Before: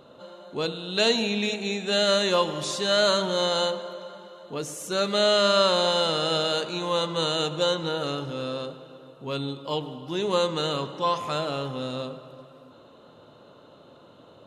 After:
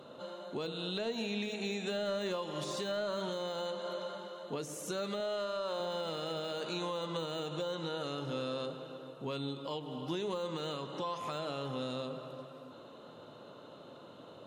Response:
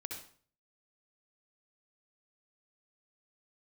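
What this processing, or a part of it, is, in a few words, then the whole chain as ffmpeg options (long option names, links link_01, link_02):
podcast mastering chain: -filter_complex "[0:a]asettb=1/sr,asplit=3[link_01][link_02][link_03];[link_01]atrim=end=5.204[link_04];[link_02]atrim=start=5.2:end=5.8,asetpts=PTS-STARTPTS,afade=type=in:duration=0.004:curve=qsin,afade=type=out:start_time=0.596:duration=0.004:curve=qsin,bass=frequency=250:gain=-10,treble=frequency=4000:gain=2[link_05];[link_03]atrim=start=5.796[link_06];[link_04][link_05]acrossfade=duration=0.004:curve1=hsin:curve2=qsin[link_07];[link_07][link_06]acrossfade=duration=0.004:curve1=qsin:curve2=hsin,highpass=110,deesser=0.85,acompressor=threshold=-33dB:ratio=3,alimiter=level_in=2.5dB:limit=-24dB:level=0:latency=1:release=222,volume=-2.5dB" -ar 48000 -c:a libmp3lame -b:a 96k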